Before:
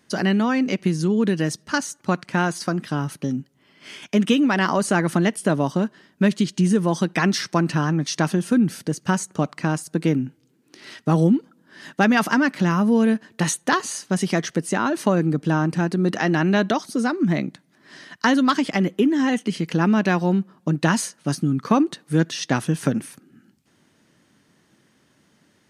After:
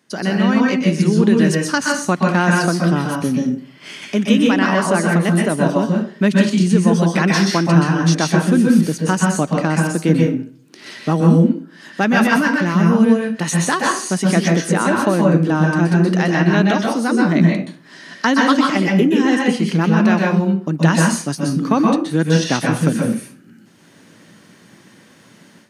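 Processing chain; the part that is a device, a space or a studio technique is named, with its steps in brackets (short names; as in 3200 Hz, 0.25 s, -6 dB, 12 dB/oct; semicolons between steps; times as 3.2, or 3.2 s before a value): far laptop microphone (reverb RT60 0.40 s, pre-delay 0.119 s, DRR -1 dB; HPF 130 Hz; AGC); gain -1 dB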